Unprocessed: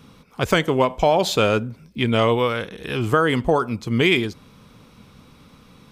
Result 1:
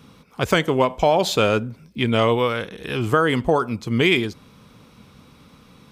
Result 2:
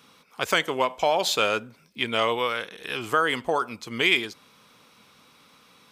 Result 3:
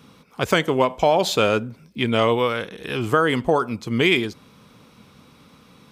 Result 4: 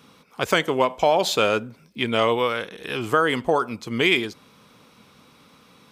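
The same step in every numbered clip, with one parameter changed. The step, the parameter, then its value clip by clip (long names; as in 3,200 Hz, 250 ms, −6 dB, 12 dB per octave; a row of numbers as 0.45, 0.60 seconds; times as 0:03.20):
high-pass filter, corner frequency: 42, 1,000, 140, 380 Hertz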